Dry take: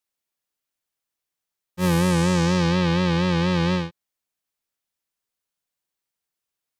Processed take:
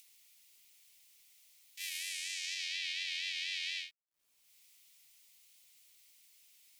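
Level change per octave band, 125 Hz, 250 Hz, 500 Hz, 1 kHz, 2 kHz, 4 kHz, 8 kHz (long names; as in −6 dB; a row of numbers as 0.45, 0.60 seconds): below −40 dB, below −40 dB, below −40 dB, below −40 dB, −10.0 dB, −5.5 dB, −7.0 dB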